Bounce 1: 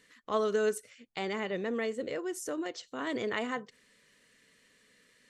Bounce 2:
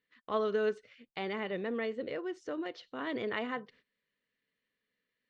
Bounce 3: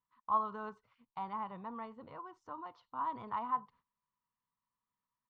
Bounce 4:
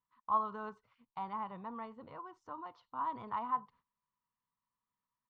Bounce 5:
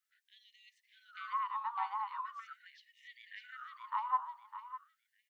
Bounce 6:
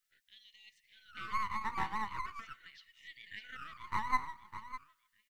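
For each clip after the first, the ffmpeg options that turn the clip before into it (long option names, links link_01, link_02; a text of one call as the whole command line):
ffmpeg -i in.wav -af "lowpass=frequency=4100:width=0.5412,lowpass=frequency=4100:width=1.3066,agate=range=-18dB:threshold=-59dB:ratio=16:detection=peak,volume=-2dB" out.wav
ffmpeg -i in.wav -af "firequalizer=gain_entry='entry(100,0);entry(380,-20);entry(560,-16);entry(960,12);entry(1700,-18)':delay=0.05:min_phase=1" out.wav
ffmpeg -i in.wav -af anull out.wav
ffmpeg -i in.wav -af "aecho=1:1:606|1212|1818|2424:0.562|0.163|0.0473|0.0137,afftfilt=real='re*gte(b*sr/1024,750*pow(1800/750,0.5+0.5*sin(2*PI*0.41*pts/sr)))':imag='im*gte(b*sr/1024,750*pow(1800/750,0.5+0.5*sin(2*PI*0.41*pts/sr)))':win_size=1024:overlap=0.75,volume=7dB" out.wav
ffmpeg -i in.wav -filter_complex "[0:a]acrossover=split=1800|2000[link_01][link_02][link_03];[link_01]aeval=exprs='max(val(0),0)':channel_layout=same[link_04];[link_02]aecho=1:1:152|304|456|608:0.316|0.104|0.0344|0.0114[link_05];[link_04][link_05][link_03]amix=inputs=3:normalize=0,volume=4.5dB" out.wav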